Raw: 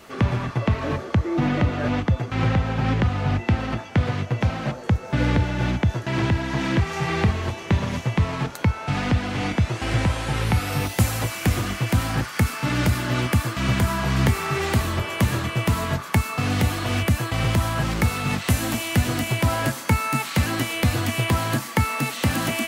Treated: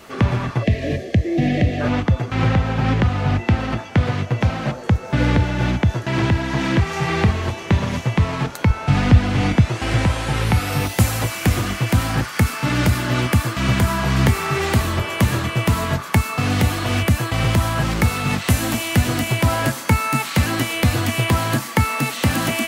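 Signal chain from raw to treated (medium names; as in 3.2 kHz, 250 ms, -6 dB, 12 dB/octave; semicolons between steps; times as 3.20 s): 0.63–1.81 s: time-frequency box 760–1600 Hz -22 dB; 8.70–9.61 s: bass shelf 180 Hz +8.5 dB; trim +3.5 dB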